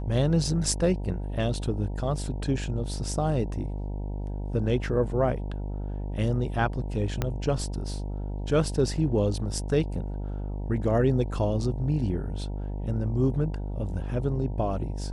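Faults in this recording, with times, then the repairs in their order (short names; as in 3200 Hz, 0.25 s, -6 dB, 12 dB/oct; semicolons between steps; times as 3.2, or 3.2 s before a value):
buzz 50 Hz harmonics 19 -32 dBFS
7.22 pop -12 dBFS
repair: de-click; de-hum 50 Hz, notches 19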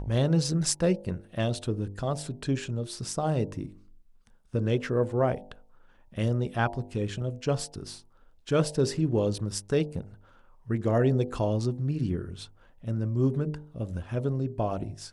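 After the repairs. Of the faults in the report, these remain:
7.22 pop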